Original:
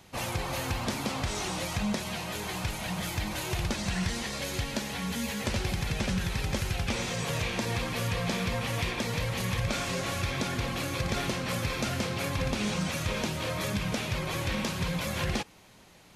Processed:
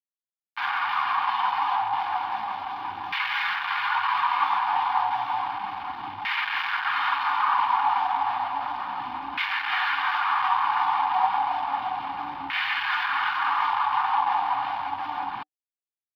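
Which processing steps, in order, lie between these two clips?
pitch shift -11 st; limiter -28.5 dBFS, peak gain reduction 10 dB; soft clip -38 dBFS, distortion -11 dB; AGC gain up to 10.5 dB; bit-crush 5-bit; band shelf 1600 Hz +13 dB 2.5 oct; notch comb 660 Hz; LFO band-pass saw down 0.32 Hz 400–2100 Hz; EQ curve 300 Hz 0 dB, 480 Hz -28 dB, 760 Hz +10 dB, 1700 Hz -1 dB, 4700 Hz +10 dB, 7900 Hz -18 dB, 14000 Hz +12 dB; gain -2 dB

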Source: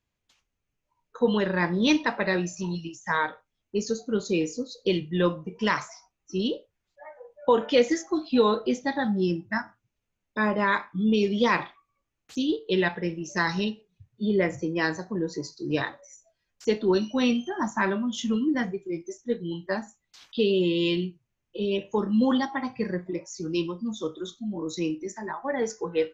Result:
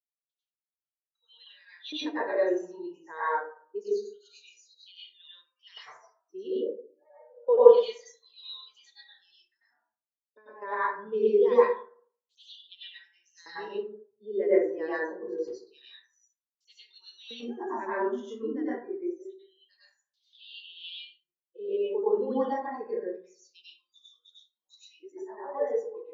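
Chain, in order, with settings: ending faded out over 0.71 s; 9.44–10.62 compressor 8:1, threshold -35 dBFS, peak gain reduction 15.5 dB; LFO high-pass square 0.26 Hz 430–3500 Hz; plate-style reverb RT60 0.75 s, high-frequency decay 0.4×, pre-delay 85 ms, DRR -8.5 dB; spectral expander 1.5:1; gain -7.5 dB

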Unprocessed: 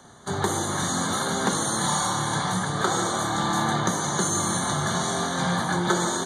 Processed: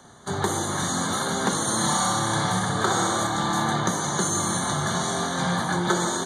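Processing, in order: 1.61–3.27 flutter echo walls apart 10.9 m, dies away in 0.7 s

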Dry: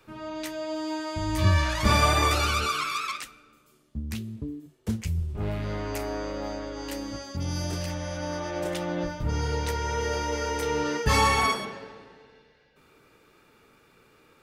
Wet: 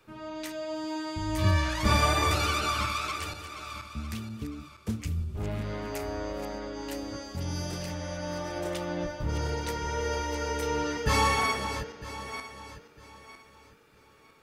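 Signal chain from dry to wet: regenerating reverse delay 0.477 s, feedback 51%, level -10 dB; gain -3 dB

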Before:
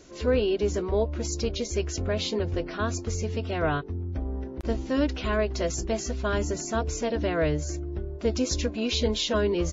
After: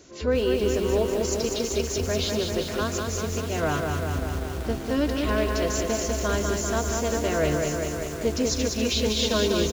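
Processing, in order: HPF 49 Hz 12 dB/oct; high shelf 5000 Hz +4 dB; echo 0.142 s -14.5 dB; lo-fi delay 0.196 s, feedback 80%, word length 7-bit, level -3.5 dB

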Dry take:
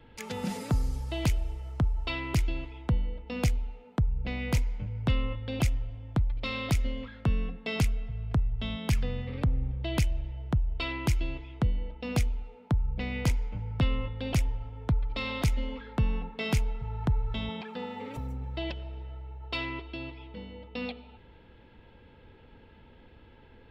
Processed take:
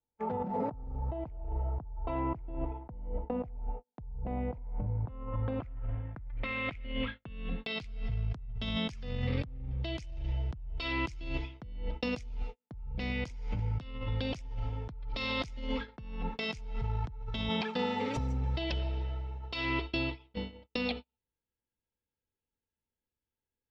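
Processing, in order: low-pass sweep 820 Hz -> 5700 Hz, 4.89–8.27; gate -41 dBFS, range -46 dB; negative-ratio compressor -36 dBFS, ratio -1

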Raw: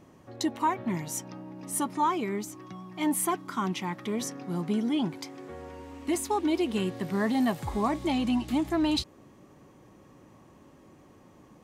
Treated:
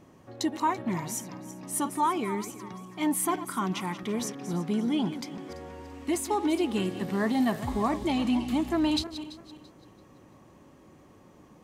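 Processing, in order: regenerating reverse delay 0.168 s, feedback 52%, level -12 dB

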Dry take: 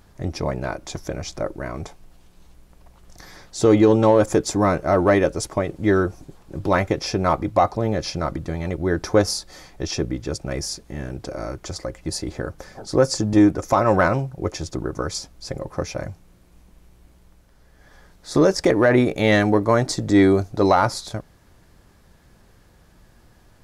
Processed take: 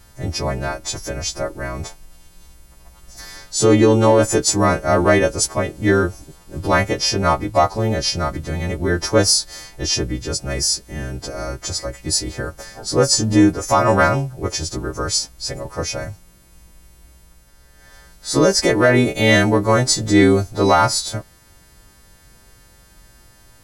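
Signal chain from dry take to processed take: frequency quantiser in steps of 2 st; low shelf 79 Hz +8 dB; gain +2 dB

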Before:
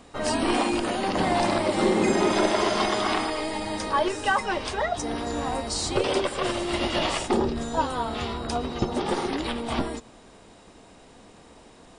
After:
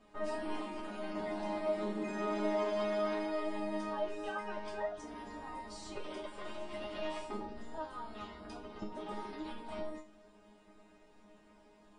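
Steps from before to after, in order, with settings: compressor 1.5:1, threshold -35 dBFS, peak gain reduction 6.5 dB; high shelf 3500 Hz -10.5 dB; resonator bank G#3 fifth, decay 0.3 s; gain +5 dB

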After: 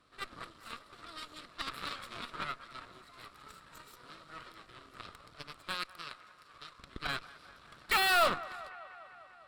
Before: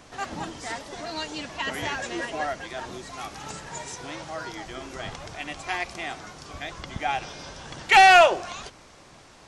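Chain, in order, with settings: added harmonics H 3 -16 dB, 7 -21 dB, 8 -25 dB, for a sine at -8 dBFS; 5.74–6.79 low shelf 420 Hz -8 dB; overloaded stage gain 24.5 dB; thirty-one-band EQ 800 Hz -8 dB, 1250 Hz +12 dB, 4000 Hz +7 dB, 6300 Hz -12 dB; band-limited delay 0.198 s, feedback 71%, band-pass 1100 Hz, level -17 dB

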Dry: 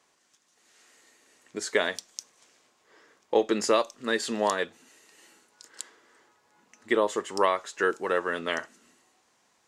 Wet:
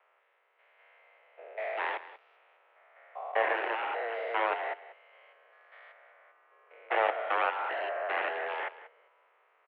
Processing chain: stepped spectrum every 0.2 s; frequency shift +150 Hz; added harmonics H 7 -8 dB, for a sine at -15 dBFS; on a send: echo 0.186 s -16 dB; on the sum: mistuned SSB +83 Hz 310–2700 Hz; air absorption 210 m

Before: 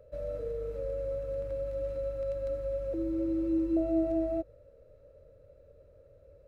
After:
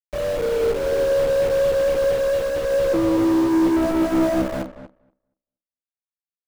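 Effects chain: frequency-shifting echo 0.21 s, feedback 40%, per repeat -66 Hz, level -10.5 dB; in parallel at -11 dB: requantised 6-bit, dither none; on the sum: notches 50/100/150 Hz; companded quantiser 2-bit; tilt shelf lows +5.5 dB, about 1400 Hz; on a send: darkening echo 0.236 s, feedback 16%, low-pass 2000 Hz, level -7 dB; on the sum: upward expander 1.5:1, over -44 dBFS; gain +3 dB

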